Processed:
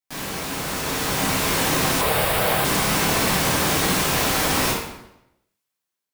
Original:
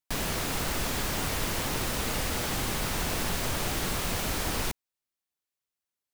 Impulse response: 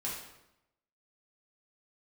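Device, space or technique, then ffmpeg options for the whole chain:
far laptop microphone: -filter_complex "[1:a]atrim=start_sample=2205[s0];[0:a][s0]afir=irnorm=-1:irlink=0,highpass=f=160:p=1,dynaudnorm=f=430:g=5:m=2.82,asettb=1/sr,asplit=3[s1][s2][s3];[s1]atrim=end=2.014[s4];[s2]atrim=start=2.01:end=2.65,asetpts=PTS-STARTPTS,afade=t=in:d=0.004:c=qsin,afade=t=out:st=0.636:d=0.004:c=qsin,equalizer=f=100:t=o:w=0.67:g=3,equalizer=f=250:t=o:w=0.67:g=-11,equalizer=f=630:t=o:w=0.67:g=6,equalizer=f=6300:t=o:w=0.67:g=-11,equalizer=f=16000:t=o:w=0.67:g=3[s5];[s3]atrim=start=2.646[s6];[s4][s5]acrossfade=d=0.004:c1=hsin:c2=qsin[s7];[s7][s6]acrossfade=d=0.004:c1=qsin:c2=hsin"

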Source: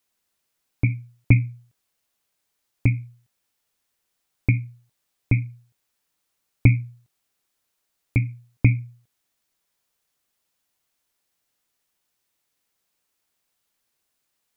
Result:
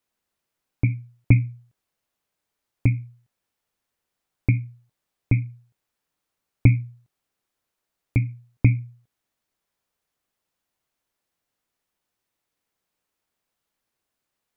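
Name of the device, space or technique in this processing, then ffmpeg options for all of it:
behind a face mask: -af "highshelf=f=2400:g=-8"

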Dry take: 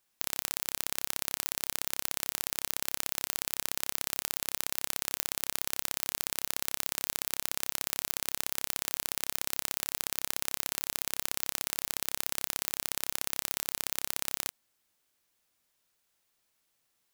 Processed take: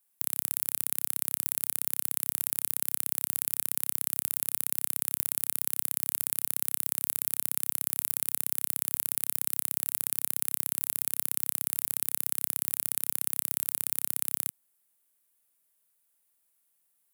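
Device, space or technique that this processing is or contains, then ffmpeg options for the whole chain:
budget condenser microphone: -af "highpass=f=120:w=0.5412,highpass=f=120:w=1.3066,highshelf=f=7700:t=q:w=1.5:g=10.5,volume=0.501"

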